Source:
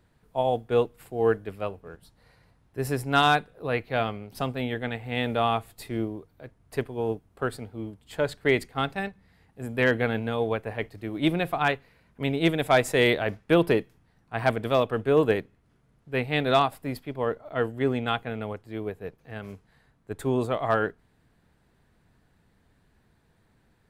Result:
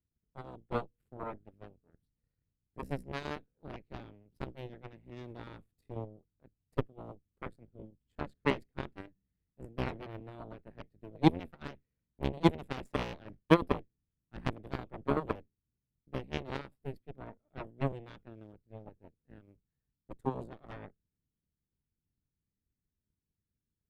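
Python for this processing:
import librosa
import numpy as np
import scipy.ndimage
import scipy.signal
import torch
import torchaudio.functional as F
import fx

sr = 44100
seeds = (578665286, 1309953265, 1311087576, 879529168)

y = fx.octave_divider(x, sr, octaves=1, level_db=-5.0)
y = fx.tilt_shelf(y, sr, db=8.0, hz=1100.0)
y = fx.transient(y, sr, attack_db=7, sustain_db=2)
y = fx.peak_eq(y, sr, hz=780.0, db=-13.5, octaves=1.3)
y = fx.cheby_harmonics(y, sr, harmonics=(3, 4, 7, 8), levels_db=(-11, -22, -31, -34), full_scale_db=-1.0)
y = y * librosa.db_to_amplitude(-5.0)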